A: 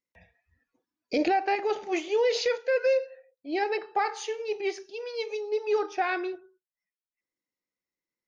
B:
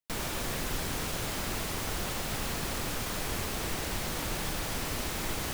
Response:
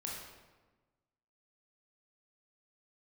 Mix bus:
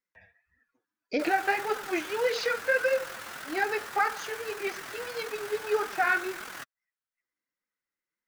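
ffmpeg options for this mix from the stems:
-filter_complex "[0:a]volume=-1dB[link_01];[1:a]highpass=frequency=440:poles=1,alimiter=level_in=6.5dB:limit=-24dB:level=0:latency=1,volume=-6.5dB,tremolo=f=42:d=0.667,adelay=1100,volume=1dB[link_02];[link_01][link_02]amix=inputs=2:normalize=0,equalizer=frequency=1500:width=1.6:gain=12.5,flanger=delay=3.7:depth=7:regen=13:speed=1.7:shape=triangular"

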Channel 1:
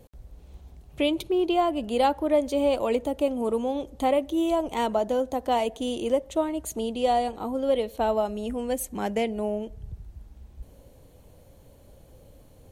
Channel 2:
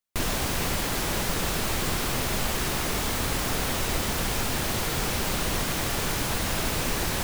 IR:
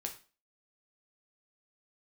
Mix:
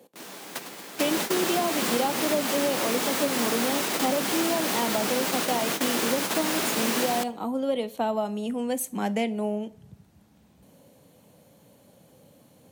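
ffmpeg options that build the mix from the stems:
-filter_complex "[0:a]asubboost=boost=9:cutoff=120,volume=0dB,asplit=3[link_01][link_02][link_03];[link_02]volume=-8.5dB[link_04];[1:a]volume=3dB,asplit=2[link_05][link_06];[link_06]volume=-16dB[link_07];[link_03]apad=whole_len=319006[link_08];[link_05][link_08]sidechaingate=range=-33dB:threshold=-33dB:ratio=16:detection=peak[link_09];[2:a]atrim=start_sample=2205[link_10];[link_04][link_07]amix=inputs=2:normalize=0[link_11];[link_11][link_10]afir=irnorm=-1:irlink=0[link_12];[link_01][link_09][link_12]amix=inputs=3:normalize=0,highpass=frequency=210:width=0.5412,highpass=frequency=210:width=1.3066,acrossover=split=290[link_13][link_14];[link_14]acompressor=threshold=-23dB:ratio=6[link_15];[link_13][link_15]amix=inputs=2:normalize=0"

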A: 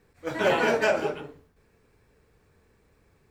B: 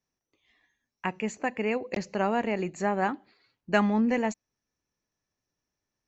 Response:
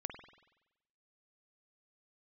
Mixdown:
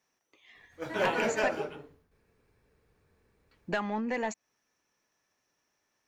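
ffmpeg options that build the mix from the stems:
-filter_complex "[0:a]bandreject=frequency=7700:width=10,adelay=550,volume=-6.5dB[link_01];[1:a]equalizer=frequency=4400:width_type=o:width=0.78:gain=-4,acompressor=threshold=-33dB:ratio=12,asplit=2[link_02][link_03];[link_03]highpass=frequency=720:poles=1,volume=19dB,asoftclip=type=tanh:threshold=-16.5dB[link_04];[link_02][link_04]amix=inputs=2:normalize=0,lowpass=frequency=6000:poles=1,volume=-6dB,volume=-1.5dB,asplit=3[link_05][link_06][link_07];[link_05]atrim=end=1.56,asetpts=PTS-STARTPTS,afade=type=out:start_time=1.556:duration=0.004:curve=hsin[link_08];[link_06]atrim=start=1.56:end=3.51,asetpts=PTS-STARTPTS,volume=0[link_09];[link_07]atrim=start=3.51,asetpts=PTS-STARTPTS,afade=type=in:duration=0.004:curve=hsin[link_10];[link_08][link_09][link_10]concat=n=3:v=0:a=1[link_11];[link_01][link_11]amix=inputs=2:normalize=0"

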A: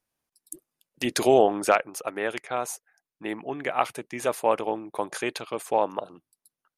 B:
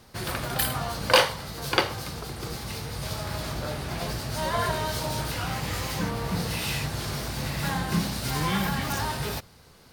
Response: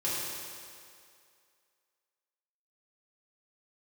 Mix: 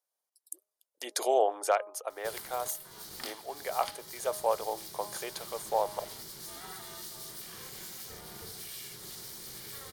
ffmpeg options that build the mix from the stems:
-filter_complex "[0:a]highpass=frequency=500:width=0.5412,highpass=frequency=500:width=1.3066,equalizer=frequency=2000:width_type=o:width=1.8:gain=-9,volume=-2dB[link_01];[1:a]crystalizer=i=6:c=0,aeval=exprs='val(0)*sin(2*PI*270*n/s)':channel_layout=same,acompressor=threshold=-29dB:ratio=3,adelay=2100,volume=-13.5dB[link_02];[link_01][link_02]amix=inputs=2:normalize=0,bandreject=frequency=2600:width=8.3,bandreject=frequency=206.3:width_type=h:width=4,bandreject=frequency=412.6:width_type=h:width=4,bandreject=frequency=618.9:width_type=h:width=4,bandreject=frequency=825.2:width_type=h:width=4,bandreject=frequency=1031.5:width_type=h:width=4,bandreject=frequency=1237.8:width_type=h:width=4"

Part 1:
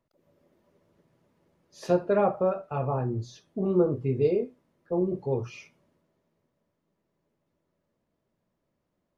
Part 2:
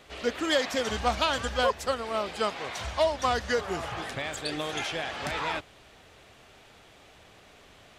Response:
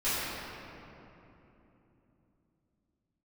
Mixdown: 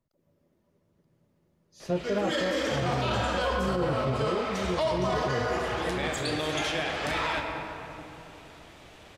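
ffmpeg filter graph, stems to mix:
-filter_complex "[0:a]bass=frequency=250:gain=7,treble=frequency=4000:gain=3,volume=-6dB,asplit=3[link_01][link_02][link_03];[link_02]volume=-5.5dB[link_04];[1:a]adelay=1800,volume=0dB,asplit=2[link_05][link_06];[link_06]volume=-12dB[link_07];[link_03]apad=whole_len=431614[link_08];[link_05][link_08]sidechaincompress=threshold=-42dB:ratio=3:attack=16:release=309[link_09];[2:a]atrim=start_sample=2205[link_10];[link_07][link_10]afir=irnorm=-1:irlink=0[link_11];[link_04]aecho=0:1:930:1[link_12];[link_01][link_09][link_11][link_12]amix=inputs=4:normalize=0,alimiter=limit=-19dB:level=0:latency=1:release=20"

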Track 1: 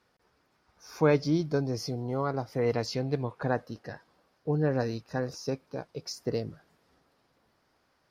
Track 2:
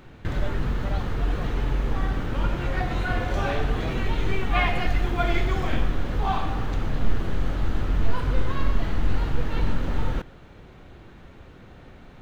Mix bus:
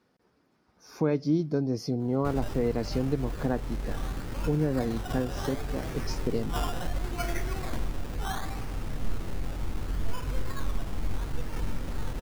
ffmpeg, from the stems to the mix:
ffmpeg -i stem1.wav -i stem2.wav -filter_complex "[0:a]equalizer=frequency=240:width_type=o:width=1.9:gain=10.5,volume=-3dB[link_01];[1:a]acrusher=samples=16:mix=1:aa=0.000001:lfo=1:lforange=9.6:lforate=0.7,adelay=2000,volume=-8dB[link_02];[link_01][link_02]amix=inputs=2:normalize=0,alimiter=limit=-16dB:level=0:latency=1:release=350" out.wav

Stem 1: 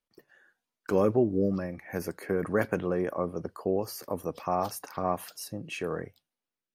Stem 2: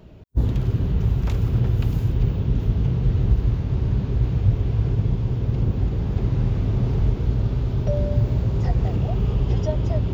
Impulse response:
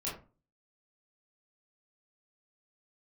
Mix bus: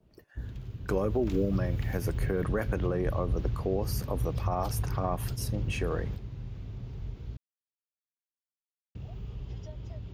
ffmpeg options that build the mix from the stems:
-filter_complex "[0:a]volume=0.5dB,asplit=2[link_01][link_02];[1:a]acrossover=split=140[link_03][link_04];[link_04]acompressor=threshold=-37dB:ratio=1.5[link_05];[link_03][link_05]amix=inputs=2:normalize=0,adynamicequalizer=threshold=0.00282:dfrequency=1500:dqfactor=0.7:tfrequency=1500:tqfactor=0.7:attack=5:release=100:ratio=0.375:range=3.5:mode=boostabove:tftype=highshelf,volume=-10dB,asplit=3[link_06][link_07][link_08];[link_06]atrim=end=7.37,asetpts=PTS-STARTPTS,afade=type=out:start_time=7.366:duration=0.004:curve=hsin[link_09];[link_07]atrim=start=7.37:end=8.95,asetpts=PTS-STARTPTS,volume=0[link_10];[link_08]atrim=start=8.95,asetpts=PTS-STARTPTS,afade=type=in:duration=0.004:curve=hsin[link_11];[link_09][link_10][link_11]concat=n=3:v=0:a=1[link_12];[link_02]apad=whole_len=447012[link_13];[link_12][link_13]sidechaingate=range=-8dB:threshold=-48dB:ratio=16:detection=peak[link_14];[link_01][link_14]amix=inputs=2:normalize=0,alimiter=limit=-18.5dB:level=0:latency=1:release=95"

